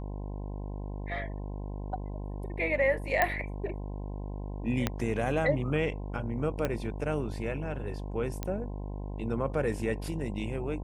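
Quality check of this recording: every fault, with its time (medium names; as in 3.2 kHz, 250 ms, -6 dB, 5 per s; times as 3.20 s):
buzz 50 Hz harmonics 21 -37 dBFS
3.22 s: pop -11 dBFS
4.87 s: pop -12 dBFS
6.65 s: pop -15 dBFS
8.43 s: pop -18 dBFS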